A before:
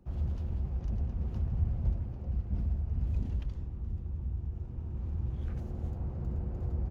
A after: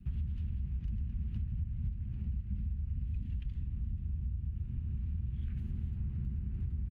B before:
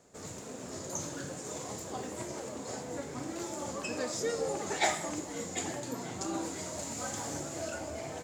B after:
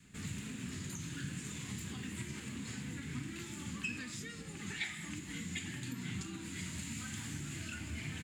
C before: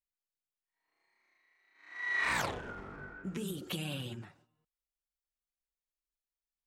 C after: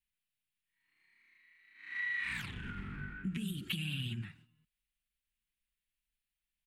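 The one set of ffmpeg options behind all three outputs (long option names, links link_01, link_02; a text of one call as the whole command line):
ffmpeg -i in.wav -af "adynamicequalizer=threshold=0.00251:dfrequency=640:dqfactor=2:tfrequency=640:tqfactor=2:attack=5:release=100:ratio=0.375:range=3:mode=cutabove:tftype=bell,acompressor=threshold=-41dB:ratio=10,firequalizer=gain_entry='entry(210,0);entry(290,-9);entry(550,-27);entry(890,-18);entry(1700,-3);entry(2700,2);entry(5700,-14);entry(9400,-4);entry(14000,-8)':delay=0.05:min_phase=1,volume=8.5dB" out.wav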